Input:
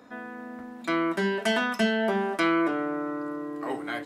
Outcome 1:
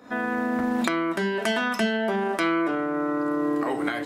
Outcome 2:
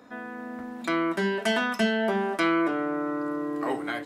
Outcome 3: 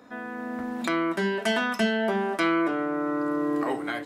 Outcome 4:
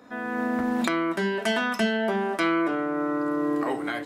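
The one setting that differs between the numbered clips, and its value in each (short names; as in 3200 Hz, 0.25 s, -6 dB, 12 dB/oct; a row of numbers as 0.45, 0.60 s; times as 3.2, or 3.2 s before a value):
recorder AGC, rising by: 90, 5.2, 13, 32 dB/s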